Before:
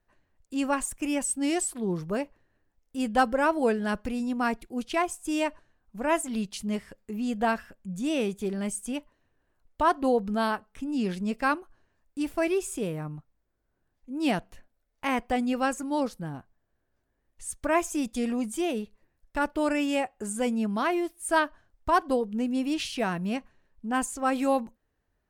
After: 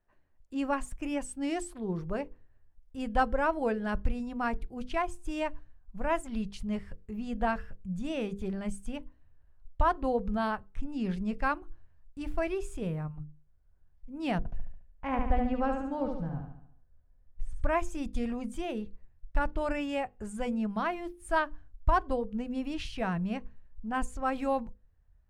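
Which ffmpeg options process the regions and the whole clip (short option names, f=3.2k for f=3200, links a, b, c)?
-filter_complex "[0:a]asettb=1/sr,asplit=3[a][b][c];[a]atrim=end=14.384[d];[b]atrim=start=14.38:end=17.64,asetpts=PTS-STARTPTS,afade=t=in:d=0.004:c=qsin,afade=t=out:st=3.256:d=0.004:c=qsin,lowpass=f=1.2k:p=1,aecho=1:1:4:0.31,atrim=end_sample=143766,aecho=1:1:71|142|213|284|355|426:0.562|0.281|0.141|0.0703|0.0351|0.0176,atrim=end_sample=143766[e];[c]atrim=start=17.636[f];[d][e]acrossfade=d=0.004:c1=hsin:c2=qsin[g];[g][f]acrossfade=d=0.004:c1=qsin:c2=hsin,lowpass=f=1.9k:p=1,bandreject=f=50:t=h:w=6,bandreject=f=100:t=h:w=6,bandreject=f=150:t=h:w=6,bandreject=f=200:t=h:w=6,bandreject=f=250:t=h:w=6,bandreject=f=300:t=h:w=6,bandreject=f=350:t=h:w=6,bandreject=f=400:t=h:w=6,bandreject=f=450:t=h:w=6,bandreject=f=500:t=h:w=6,asubboost=boost=9.5:cutoff=92,volume=-2dB"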